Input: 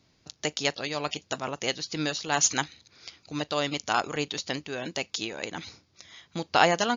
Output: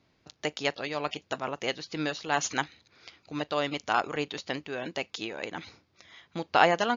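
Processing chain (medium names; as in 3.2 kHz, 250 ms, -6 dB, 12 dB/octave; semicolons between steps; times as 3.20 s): tone controls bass -4 dB, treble -12 dB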